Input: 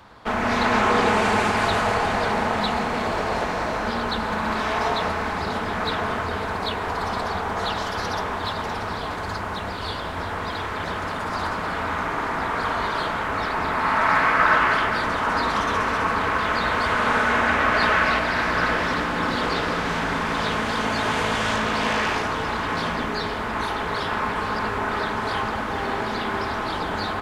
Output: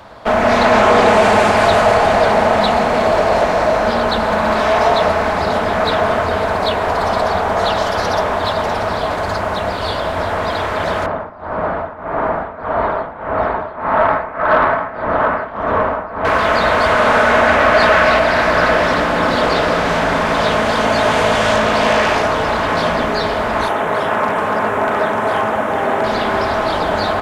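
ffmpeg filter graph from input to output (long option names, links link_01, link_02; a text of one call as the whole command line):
ffmpeg -i in.wav -filter_complex "[0:a]asettb=1/sr,asplit=3[link_01][link_02][link_03];[link_01]atrim=end=11.064[link_04];[link_02]atrim=start=11.06:end=16.25,asetpts=PTS-STARTPTS,afade=type=in:duration=0.004:curve=qsin,afade=type=out:start_time=5.186:duration=0.004:curve=qsin,tremolo=f=1.7:d=0.9,lowpass=1400,aecho=1:1:700:0.447,atrim=end_sample=228879[link_05];[link_03]atrim=start=16.246[link_06];[link_04][link_05]acrossfade=duration=0.004:curve1=hsin:curve2=qsin[link_07];[link_07][link_06]acrossfade=duration=0.004:curve1=qsin:curve2=hsin,asettb=1/sr,asplit=3[link_08][link_09][link_10];[link_08]atrim=end=23.684[link_11];[link_09]atrim=start=23.68:end=26.04,asetpts=PTS-STARTPTS,afade=type=in:duration=0.004:curve=qsin,afade=type=out:start_time=2.356:duration=0.004:curve=qsin,highpass=120,equalizer=frequency=4500:width_type=o:width=0.67:gain=-14,aeval=exprs='0.141*(abs(mod(val(0)/0.141+3,4)-2)-1)':channel_layout=same[link_12];[link_10]atrim=start=26.036[link_13];[link_11][link_12]acrossfade=duration=0.004:curve1=hsin:curve2=qsin[link_14];[link_14][link_13]acrossfade=duration=0.004:curve1=qsin:curve2=hsin,equalizer=frequency=620:width=3.1:gain=10.5,acontrast=87" out.wav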